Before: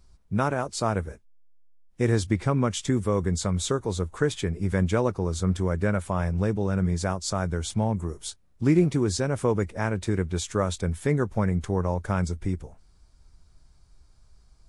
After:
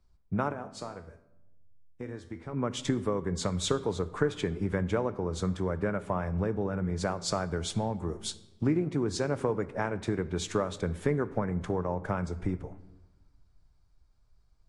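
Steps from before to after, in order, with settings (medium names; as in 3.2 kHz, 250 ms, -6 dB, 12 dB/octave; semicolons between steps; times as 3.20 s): low-pass 1.8 kHz 6 dB/octave; bass shelf 170 Hz -10.5 dB; compression 6:1, threshold -33 dBFS, peak gain reduction 14 dB; 0.52–2.53 s: feedback comb 83 Hz, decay 0.58 s, harmonics all, mix 70%; simulated room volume 1200 m³, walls mixed, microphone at 0.37 m; three bands expanded up and down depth 40%; trim +7 dB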